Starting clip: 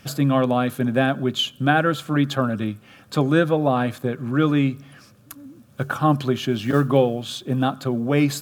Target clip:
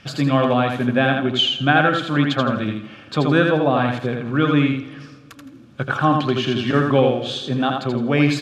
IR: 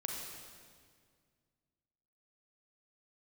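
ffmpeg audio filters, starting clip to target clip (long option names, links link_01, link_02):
-filter_complex "[0:a]lowpass=3200,highshelf=frequency=2100:gain=10.5,aecho=1:1:82|164|246|328:0.631|0.17|0.046|0.0124,asplit=2[link_01][link_02];[1:a]atrim=start_sample=2205,adelay=97[link_03];[link_02][link_03]afir=irnorm=-1:irlink=0,volume=-19.5dB[link_04];[link_01][link_04]amix=inputs=2:normalize=0"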